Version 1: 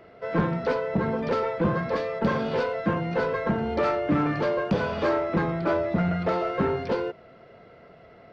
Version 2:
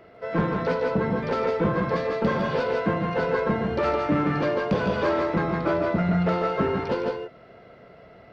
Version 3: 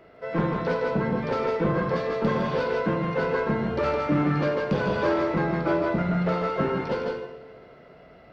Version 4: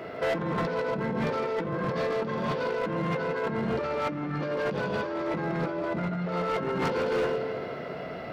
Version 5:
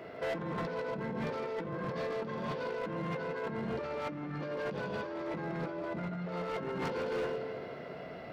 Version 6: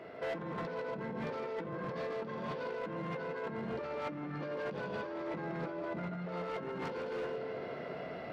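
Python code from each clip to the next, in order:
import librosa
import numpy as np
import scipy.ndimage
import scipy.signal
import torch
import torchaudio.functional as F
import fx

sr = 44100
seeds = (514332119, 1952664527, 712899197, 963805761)

y1 = fx.echo_multitap(x, sr, ms=(147, 163), db=(-7.5, -5.5))
y2 = fx.rev_double_slope(y1, sr, seeds[0], early_s=0.66, late_s=2.6, knee_db=-16, drr_db=5.5)
y2 = y2 * 10.0 ** (-2.0 / 20.0)
y3 = scipy.signal.sosfilt(scipy.signal.butter(2, 100.0, 'highpass', fs=sr, output='sos'), y2)
y3 = fx.over_compress(y3, sr, threshold_db=-34.0, ratio=-1.0)
y3 = np.clip(10.0 ** (29.0 / 20.0) * y3, -1.0, 1.0) / 10.0 ** (29.0 / 20.0)
y3 = y3 * 10.0 ** (5.5 / 20.0)
y4 = fx.notch(y3, sr, hz=1300.0, q=22.0)
y4 = y4 * 10.0 ** (-7.5 / 20.0)
y5 = fx.low_shelf(y4, sr, hz=120.0, db=-5.5)
y5 = fx.rider(y5, sr, range_db=4, speed_s=0.5)
y5 = fx.high_shelf(y5, sr, hz=6000.0, db=-7.0)
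y5 = y5 * 10.0 ** (-1.5 / 20.0)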